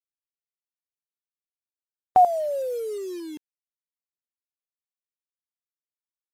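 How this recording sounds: tremolo saw up 0.89 Hz, depth 75%; a quantiser's noise floor 8-bit, dither none; AC-3

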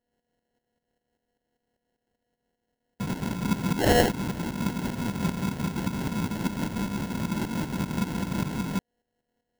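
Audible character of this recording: a buzz of ramps at a fixed pitch in blocks of 8 samples; tremolo saw up 5.1 Hz, depth 65%; aliases and images of a low sample rate 1.2 kHz, jitter 0%

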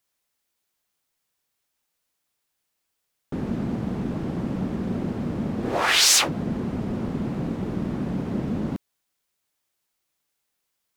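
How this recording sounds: noise floor -78 dBFS; spectral tilt -3.0 dB/octave

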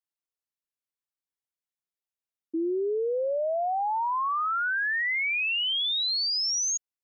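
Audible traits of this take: noise floor -94 dBFS; spectral tilt -2.5 dB/octave

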